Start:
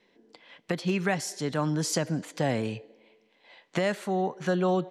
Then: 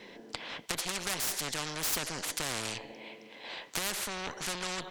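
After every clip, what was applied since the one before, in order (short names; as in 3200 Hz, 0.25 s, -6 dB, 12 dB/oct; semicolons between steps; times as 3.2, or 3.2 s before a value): added harmonics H 8 -18 dB, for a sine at -14 dBFS; spectral compressor 4:1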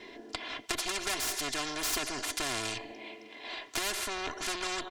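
high shelf 11000 Hz -8.5 dB; comb 2.9 ms, depth 80%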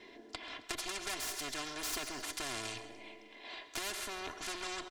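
feedback echo 0.134 s, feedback 42%, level -15.5 dB; on a send at -18 dB: reverb RT60 0.85 s, pre-delay 60 ms; on the sum: gain -6.5 dB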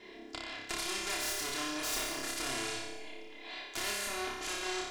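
flutter echo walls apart 5.1 m, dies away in 0.83 s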